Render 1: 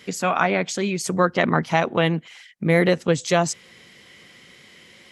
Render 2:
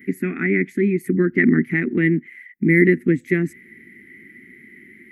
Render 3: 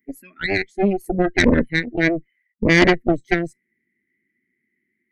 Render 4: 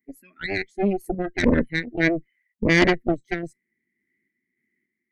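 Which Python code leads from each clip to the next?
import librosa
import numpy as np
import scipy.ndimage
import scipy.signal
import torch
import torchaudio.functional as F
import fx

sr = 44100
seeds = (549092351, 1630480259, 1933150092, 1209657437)

y1 = fx.curve_eq(x, sr, hz=(150.0, 250.0, 380.0, 570.0, 1000.0, 2000.0, 3000.0, 5200.0, 7500.0, 13000.0), db=(0, 13, 8, -25, -29, 10, -20, -29, -23, 7))
y1 = y1 * librosa.db_to_amplitude(-1.0)
y2 = fx.noise_reduce_blind(y1, sr, reduce_db=27)
y2 = fx.cheby_harmonics(y2, sr, harmonics=(6,), levels_db=(-11,), full_scale_db=-1.5)
y2 = y2 * librosa.db_to_amplitude(-1.0)
y3 = fx.tremolo_random(y2, sr, seeds[0], hz=3.5, depth_pct=55)
y3 = y3 * librosa.db_to_amplitude(-2.0)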